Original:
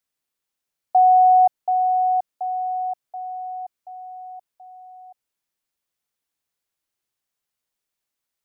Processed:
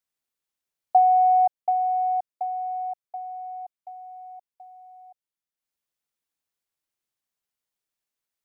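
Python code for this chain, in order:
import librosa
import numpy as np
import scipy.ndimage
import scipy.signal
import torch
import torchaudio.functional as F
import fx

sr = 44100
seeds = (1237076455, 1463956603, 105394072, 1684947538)

y = fx.transient(x, sr, attack_db=5, sustain_db=-7)
y = y * 10.0 ** (-4.5 / 20.0)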